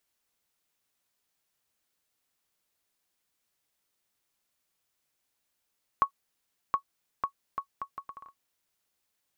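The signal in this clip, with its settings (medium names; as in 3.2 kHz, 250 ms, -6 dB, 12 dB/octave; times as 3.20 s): bouncing ball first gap 0.72 s, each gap 0.69, 1.11 kHz, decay 89 ms -12.5 dBFS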